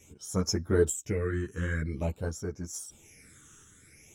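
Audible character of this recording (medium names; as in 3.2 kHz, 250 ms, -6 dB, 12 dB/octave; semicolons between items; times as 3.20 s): phasing stages 8, 0.49 Hz, lowest notch 660–3000 Hz; random-step tremolo 2.2 Hz; a shimmering, thickened sound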